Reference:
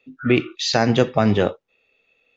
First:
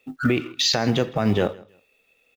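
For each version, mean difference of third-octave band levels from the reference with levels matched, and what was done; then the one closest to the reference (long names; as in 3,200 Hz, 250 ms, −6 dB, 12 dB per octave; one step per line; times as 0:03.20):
5.5 dB: mu-law and A-law mismatch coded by A
downward compressor 4 to 1, threshold −26 dBFS, peak gain reduction 13 dB
brickwall limiter −19 dBFS, peak gain reduction 6.5 dB
on a send: repeating echo 161 ms, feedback 22%, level −23 dB
on the sum: level +9 dB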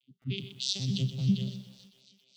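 12.0 dB: vocoder with an arpeggio as carrier bare fifth, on C3, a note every 98 ms
drawn EQ curve 150 Hz 0 dB, 650 Hz −26 dB, 1,600 Hz −27 dB, 3,100 Hz +14 dB
feedback echo with a high-pass in the loop 277 ms, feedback 71%, high-pass 320 Hz, level −19 dB
feedback echo at a low word length 125 ms, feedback 35%, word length 8 bits, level −11 dB
level −8 dB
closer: first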